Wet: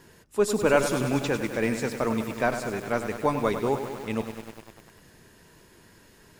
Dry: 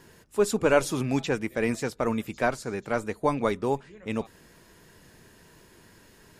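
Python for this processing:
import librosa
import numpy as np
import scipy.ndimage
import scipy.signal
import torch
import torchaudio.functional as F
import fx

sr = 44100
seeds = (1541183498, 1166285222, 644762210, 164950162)

y = fx.echo_crushed(x, sr, ms=99, feedback_pct=80, bits=7, wet_db=-9)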